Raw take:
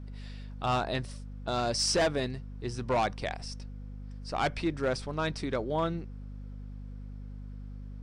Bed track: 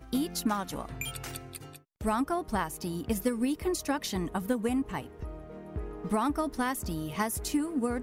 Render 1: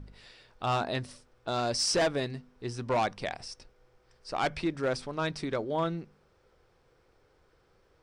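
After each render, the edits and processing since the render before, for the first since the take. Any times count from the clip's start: de-hum 50 Hz, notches 5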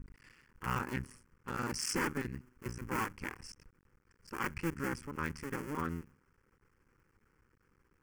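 cycle switcher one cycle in 2, muted; fixed phaser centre 1600 Hz, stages 4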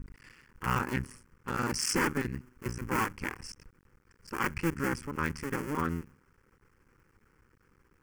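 gain +5.5 dB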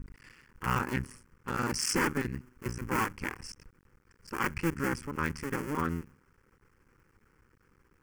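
nothing audible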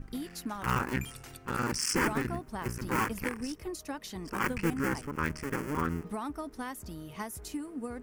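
add bed track -8.5 dB

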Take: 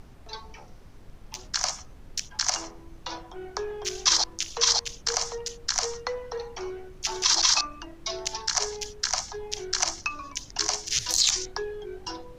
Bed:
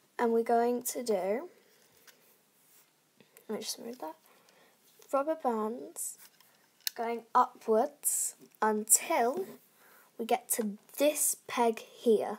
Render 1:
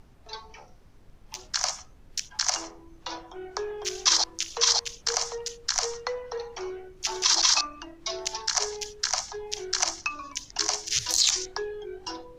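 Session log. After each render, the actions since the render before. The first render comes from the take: noise print and reduce 6 dB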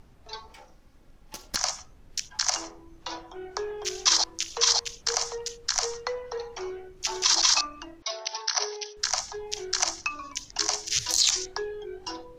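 0.47–1.56 minimum comb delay 3.6 ms; 8.02–8.97 brick-wall FIR band-pass 390–6200 Hz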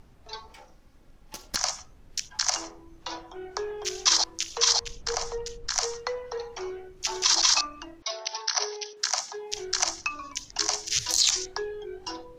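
4.8–5.71 tilt -2 dB/oct; 8.93–9.53 HPF 270 Hz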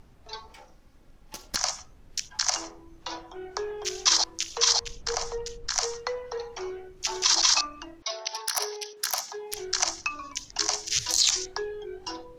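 8.33–9.58 self-modulated delay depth 0.071 ms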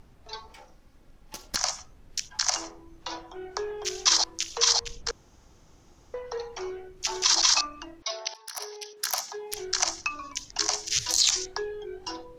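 5.11–6.14 room tone; 8.34–9.12 fade in, from -19 dB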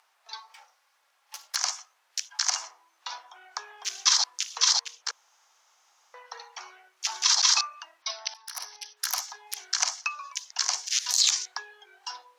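HPF 840 Hz 24 dB/oct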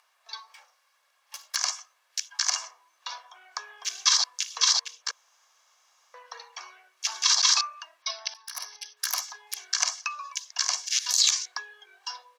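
low shelf 370 Hz -8.5 dB; comb 1.8 ms, depth 42%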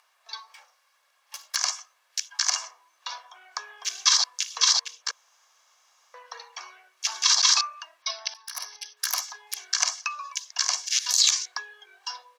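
gain +1.5 dB

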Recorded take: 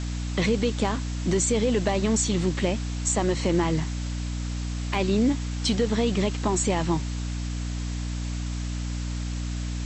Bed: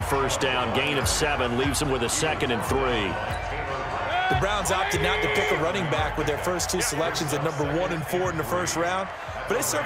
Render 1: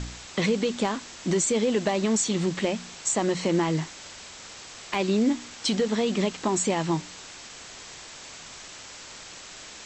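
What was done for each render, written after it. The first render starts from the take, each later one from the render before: de-hum 60 Hz, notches 5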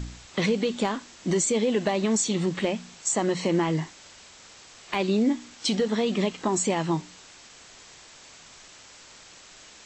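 noise print and reduce 6 dB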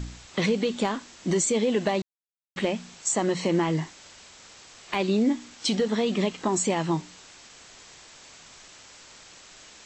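2.02–2.56 mute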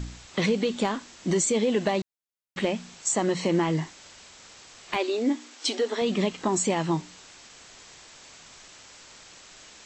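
4.96–6.02 brick-wall FIR high-pass 240 Hz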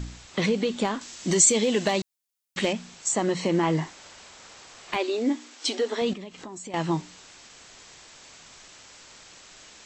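1.01–2.73 high shelf 3100 Hz +10.5 dB; 3.63–4.91 bell 830 Hz +4.5 dB 2.4 oct; 6.13–6.74 compressor 4:1, threshold -39 dBFS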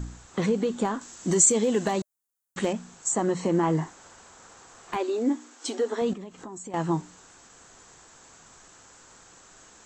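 band shelf 3300 Hz -9.5 dB; notch 600 Hz, Q 12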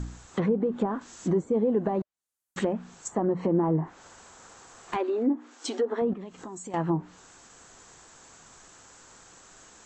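treble ducked by the level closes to 800 Hz, closed at -21 dBFS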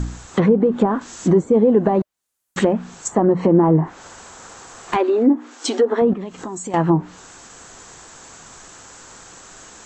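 gain +10.5 dB

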